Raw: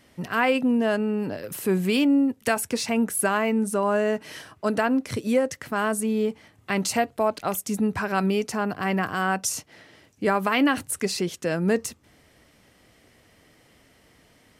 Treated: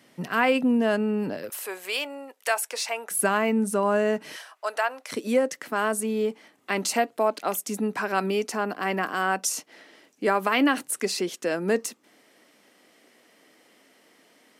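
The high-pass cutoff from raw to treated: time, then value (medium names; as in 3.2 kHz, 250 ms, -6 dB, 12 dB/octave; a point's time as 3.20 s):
high-pass 24 dB/octave
140 Hz
from 1.50 s 560 Hz
from 3.11 s 150 Hz
from 4.36 s 620 Hz
from 5.12 s 230 Hz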